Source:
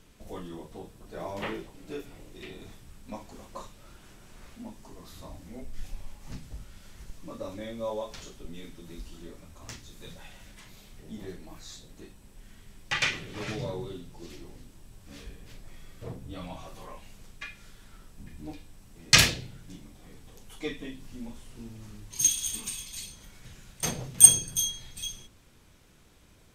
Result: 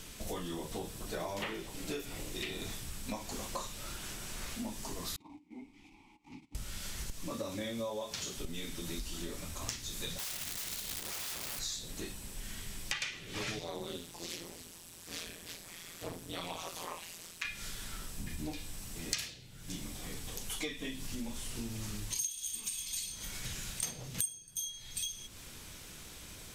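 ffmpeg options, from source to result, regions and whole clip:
-filter_complex "[0:a]asettb=1/sr,asplit=3[a][b][c];[a]atrim=end=5.164[d];[b]atrim=start=5.16:end=6.55,asetpts=PTS-STARTPTS,afade=t=in:d=0.004:c=qsin,afade=t=out:st=1.386:d=0.004:c=qsin,agate=range=-14dB:threshold=-44dB:ratio=16:release=100:detection=peak,asplit=3[e][f][g];[e]bandpass=f=300:t=q:w=8,volume=0dB[h];[f]bandpass=f=870:t=q:w=8,volume=-6dB[i];[g]bandpass=f=2.24k:t=q:w=8,volume=-9dB[j];[h][i][j]amix=inputs=3:normalize=0[k];[c]atrim=start=6.546[l];[d][k]acrossfade=d=0.004:c1=hsin:c2=qsin[m];[m][l]acrossfade=d=0.004:c1=qsin:c2=hsin,asettb=1/sr,asplit=3[n][o][p];[n]atrim=end=7.314[q];[o]atrim=start=7.31:end=8.36,asetpts=PTS-STARTPTS,afade=t=in:d=0.004:c=qsin,afade=t=out:st=1.046:d=0.004:c=qsin,highpass=110,lowshelf=f=140:g=8[r];[p]atrim=start=8.356[s];[q][r]acrossfade=d=0.004:c1=hsin:c2=qsin[t];[t][s]acrossfade=d=0.004:c1=qsin:c2=hsin,asettb=1/sr,asplit=3[u][v][w];[u]atrim=end=10.184[x];[v]atrim=start=10.18:end=11.59,asetpts=PTS-STARTPTS,afade=t=in:d=0.004:c=qsin,afade=t=out:st=1.406:d=0.004:c=qsin,equalizer=f=4.1k:t=o:w=0.25:g=3.5,aeval=exprs='(mod(188*val(0)+1,2)-1)/188':c=same[y];[w]atrim=start=11.586[z];[x][y]acrossfade=d=0.004:c1=hsin:c2=qsin[aa];[aa][z]acrossfade=d=0.004:c1=qsin:c2=hsin,asettb=1/sr,asplit=3[ab][ac][ad];[ab]atrim=end=13.594[ae];[ac]atrim=start=13.59:end=17.45,asetpts=PTS-STARTPTS,afade=t=in:d=0.004:c=qsin,afade=t=out:st=3.856:d=0.004:c=qsin,highpass=f=300:p=1,tremolo=f=170:d=1[af];[ad]atrim=start=17.446[ag];[ae][af]acrossfade=d=0.004:c1=hsin:c2=qsin[ah];[ah][ag]acrossfade=d=0.004:c1=qsin:c2=hsin,highshelf=f=2.2k:g=10.5,acompressor=threshold=-41dB:ratio=12,volume=6dB"

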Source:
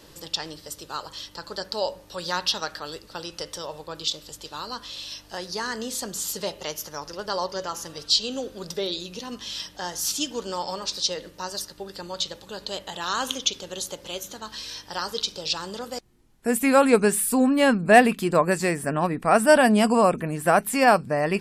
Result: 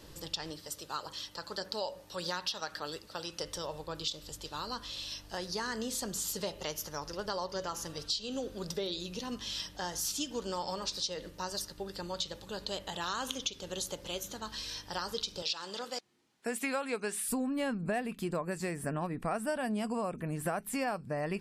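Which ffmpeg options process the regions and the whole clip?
-filter_complex "[0:a]asettb=1/sr,asplit=3[a][b][c];[a]atrim=end=0.504[d];[b]atrim=start=0.5:end=3.43,asetpts=PTS-STARTPTS,afade=t=in:d=0.004:c=qsin,afade=t=out:st=2.926:d=0.004:c=qsin,highpass=f=230:p=1,aphaser=in_gain=1:out_gain=1:delay=1.8:decay=0.24:speed=1.7:type=triangular[e];[c]atrim=start=3.426[f];[d][e]acrossfade=d=0.004:c1=hsin:c2=qsin[g];[g][f]acrossfade=d=0.004:c1=qsin:c2=hsin,asettb=1/sr,asplit=3[h][i][j];[h]atrim=end=15.424[k];[i]atrim=start=15.42:end=17.29,asetpts=PTS-STARTPTS,afade=t=in:d=0.004:c=qsin,afade=t=out:st=1.866:d=0.004:c=qsin,highpass=150,lowpass=4k,aemphasis=mode=production:type=riaa[l];[j]atrim=start=17.286[m];[k][l]acrossfade=d=0.004:c1=hsin:c2=qsin[n];[n][m]acrossfade=d=0.004:c1=qsin:c2=hsin,lowshelf=f=140:g=8,acompressor=threshold=-27dB:ratio=6,volume=-4.5dB"

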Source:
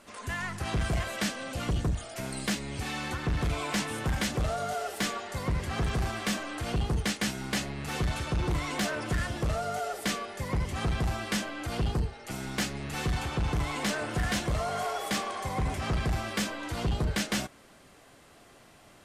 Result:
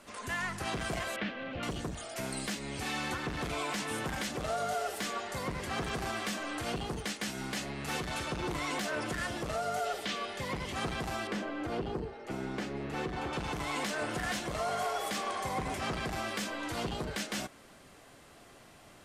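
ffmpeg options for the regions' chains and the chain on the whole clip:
-filter_complex "[0:a]asettb=1/sr,asplit=3[a][b][c];[a]atrim=end=1.164[d];[b]atrim=start=1.16:end=1.63,asetpts=PTS-STARTPTS,afade=t=in:d=0.004:c=qsin,afade=t=out:st=0.466:d=0.004:c=qsin,lowpass=f=3k:w=0.5412,lowpass=f=3k:w=1.3066,equalizer=f=970:t=o:w=1.3:g=-4.5[e];[c]atrim=start=1.626[f];[d][e]acrossfade=d=0.004:c1=hsin:c2=qsin[g];[g][f]acrossfade=d=0.004:c1=qsin:c2=hsin,asettb=1/sr,asplit=3[h][i][j];[h]atrim=end=9.854[k];[i]atrim=start=9.85:end=10.73,asetpts=PTS-STARTPTS,afade=t=in:d=0.004:c=qsin,afade=t=out:st=0.876:d=0.004:c=qsin,equalizer=f=3.3k:w=1.5:g=6,acrossover=split=6200[l][m];[m]acompressor=threshold=-51dB:ratio=4:attack=1:release=60[n];[l][n]amix=inputs=2:normalize=0[o];[j]atrim=start=10.726[p];[k][o]acrossfade=d=0.004:c1=hsin:c2=qsin[q];[q][p]acrossfade=d=0.004:c1=qsin:c2=hsin,asettb=1/sr,asplit=3[r][s][t];[r]atrim=end=11.274[u];[s]atrim=start=11.27:end=13.33,asetpts=PTS-STARTPTS,afade=t=in:d=0.004:c=qsin,afade=t=out:st=2.056:d=0.004:c=qsin,lowpass=f=1.6k:p=1,equalizer=f=390:t=o:w=0.93:g=5.5[v];[t]atrim=start=13.326[w];[u][v]acrossfade=d=0.004:c1=hsin:c2=qsin[x];[x][w]acrossfade=d=0.004:c1=qsin:c2=hsin,acrossover=split=190[y][z];[y]acompressor=threshold=-48dB:ratio=2.5[aa];[aa][z]amix=inputs=2:normalize=0,alimiter=limit=-24dB:level=0:latency=1:release=137"

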